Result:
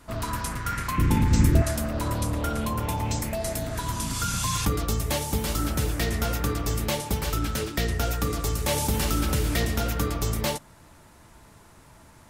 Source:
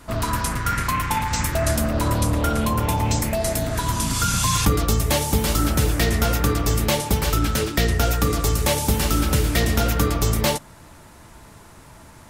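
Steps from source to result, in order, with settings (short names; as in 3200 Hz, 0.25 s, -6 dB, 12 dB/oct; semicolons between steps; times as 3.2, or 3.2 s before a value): 0.98–1.62 resonant low shelf 510 Hz +13 dB, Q 1.5; 8.68–9.66 fast leveller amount 50%; gain -6.5 dB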